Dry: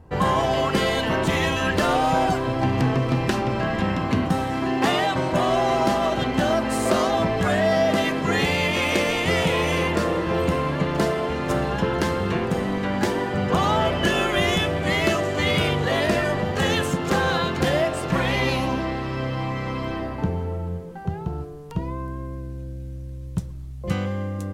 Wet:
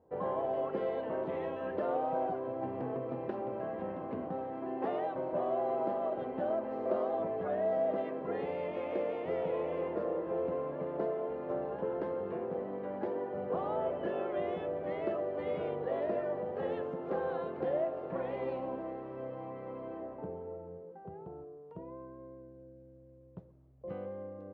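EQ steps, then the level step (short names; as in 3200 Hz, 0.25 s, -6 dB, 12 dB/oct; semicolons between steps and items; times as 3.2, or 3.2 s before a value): band-pass 520 Hz, Q 1.9; air absorption 240 m; -7.0 dB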